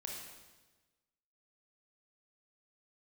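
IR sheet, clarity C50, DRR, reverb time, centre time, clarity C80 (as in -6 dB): 1.0 dB, -1.0 dB, 1.2 s, 66 ms, 3.5 dB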